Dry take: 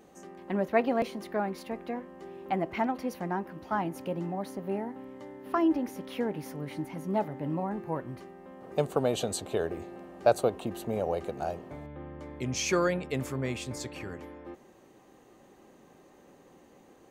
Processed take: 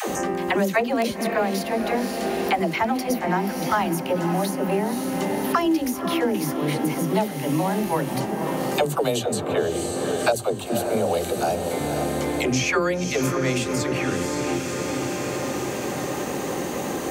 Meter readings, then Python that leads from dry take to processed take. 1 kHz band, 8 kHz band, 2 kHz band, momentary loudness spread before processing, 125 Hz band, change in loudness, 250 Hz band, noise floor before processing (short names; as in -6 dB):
+9.5 dB, +11.5 dB, +12.0 dB, 17 LU, +9.5 dB, +8.0 dB, +9.5 dB, -58 dBFS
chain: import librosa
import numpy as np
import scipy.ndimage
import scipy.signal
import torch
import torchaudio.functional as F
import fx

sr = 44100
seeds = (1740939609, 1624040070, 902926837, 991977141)

p1 = scipy.signal.sosfilt(scipy.signal.butter(2, 55.0, 'highpass', fs=sr, output='sos'), x)
p2 = fx.high_shelf(p1, sr, hz=3500.0, db=10.0)
p3 = fx.dispersion(p2, sr, late='lows', ms=99.0, hz=340.0)
p4 = p3 + fx.echo_diffused(p3, sr, ms=527, feedback_pct=50, wet_db=-11.5, dry=0)
p5 = fx.band_squash(p4, sr, depth_pct=100)
y = p5 * 10.0 ** (7.5 / 20.0)